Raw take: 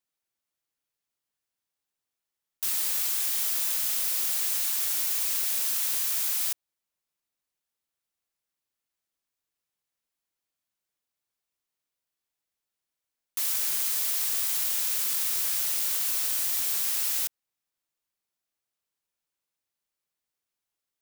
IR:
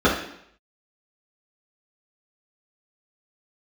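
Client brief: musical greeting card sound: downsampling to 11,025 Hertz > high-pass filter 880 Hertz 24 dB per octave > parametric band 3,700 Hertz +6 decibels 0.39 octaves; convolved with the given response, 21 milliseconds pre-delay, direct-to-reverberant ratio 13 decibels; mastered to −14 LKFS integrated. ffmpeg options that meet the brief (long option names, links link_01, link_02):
-filter_complex "[0:a]asplit=2[link_01][link_02];[1:a]atrim=start_sample=2205,adelay=21[link_03];[link_02][link_03]afir=irnorm=-1:irlink=0,volume=-34dB[link_04];[link_01][link_04]amix=inputs=2:normalize=0,aresample=11025,aresample=44100,highpass=frequency=880:width=0.5412,highpass=frequency=880:width=1.3066,equalizer=frequency=3700:width_type=o:width=0.39:gain=6,volume=21dB"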